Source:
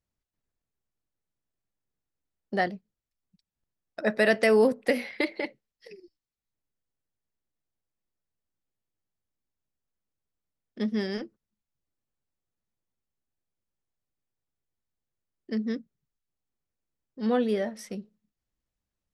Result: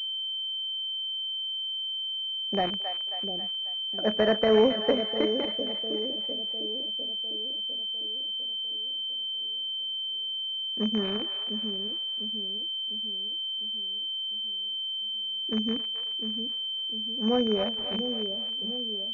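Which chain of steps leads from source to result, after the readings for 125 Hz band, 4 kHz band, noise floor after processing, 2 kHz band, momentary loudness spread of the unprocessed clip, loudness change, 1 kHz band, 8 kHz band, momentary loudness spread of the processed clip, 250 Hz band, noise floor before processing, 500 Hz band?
no reading, +22.5 dB, -33 dBFS, -8.0 dB, 18 LU, -1.0 dB, +0.5 dB, under -10 dB, 5 LU, +1.0 dB, under -85 dBFS, +0.5 dB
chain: rattle on loud lows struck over -40 dBFS, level -18 dBFS; two-band feedback delay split 580 Hz, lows 702 ms, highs 270 ms, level -8 dB; class-D stage that switches slowly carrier 3.1 kHz

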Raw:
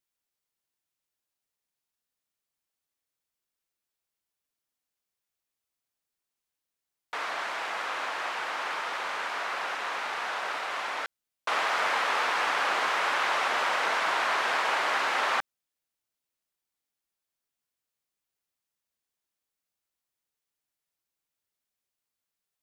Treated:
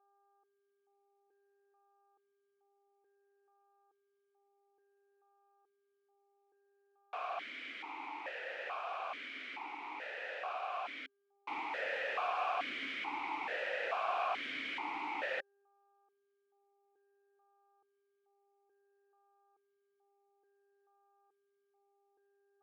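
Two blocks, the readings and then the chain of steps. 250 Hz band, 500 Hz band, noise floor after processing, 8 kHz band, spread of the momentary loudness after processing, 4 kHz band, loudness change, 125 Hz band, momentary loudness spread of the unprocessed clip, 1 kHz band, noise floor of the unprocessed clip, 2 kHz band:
-5.0 dB, -7.0 dB, -80 dBFS, under -20 dB, 9 LU, -13.5 dB, -11.0 dB, no reading, 6 LU, -10.5 dB, under -85 dBFS, -12.0 dB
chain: level rider gain up to 9 dB; mains buzz 400 Hz, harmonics 4, -55 dBFS -6 dB/octave; one-sided clip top -15.5 dBFS; stepped vowel filter 2.3 Hz; trim -6.5 dB

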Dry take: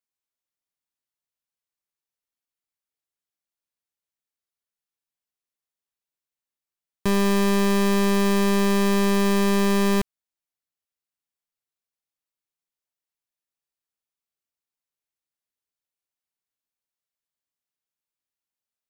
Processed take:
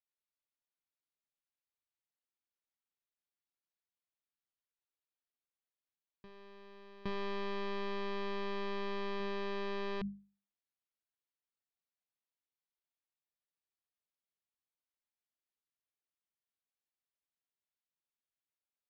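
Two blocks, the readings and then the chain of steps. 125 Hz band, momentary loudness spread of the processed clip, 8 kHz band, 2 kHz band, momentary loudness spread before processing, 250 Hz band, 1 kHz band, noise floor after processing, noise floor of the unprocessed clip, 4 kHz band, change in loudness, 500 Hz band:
-23.5 dB, 17 LU, under -35 dB, -16.0 dB, 4 LU, -23.5 dB, -15.0 dB, under -85 dBFS, under -85 dBFS, -16.5 dB, -19.0 dB, -16.0 dB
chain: steep low-pass 4.5 kHz 36 dB/octave; hum notches 50/100/150/200 Hz; peak limiter -23.5 dBFS, peak gain reduction 8.5 dB; reverse echo 815 ms -17 dB; trim -7 dB

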